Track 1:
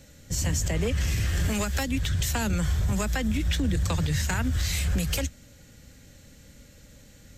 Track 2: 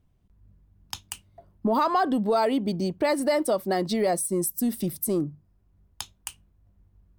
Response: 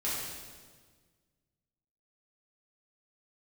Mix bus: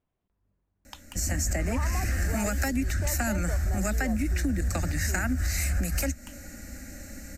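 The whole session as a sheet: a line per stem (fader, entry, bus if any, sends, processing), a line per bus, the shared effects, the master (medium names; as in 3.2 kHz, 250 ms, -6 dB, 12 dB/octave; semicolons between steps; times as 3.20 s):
+2.5 dB, 0.85 s, no send, level rider gain up to 10 dB; static phaser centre 670 Hz, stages 8
-5.0 dB, 0.00 s, no send, tone controls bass -14 dB, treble -11 dB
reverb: none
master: compression 4:1, threshold -26 dBFS, peak gain reduction 12.5 dB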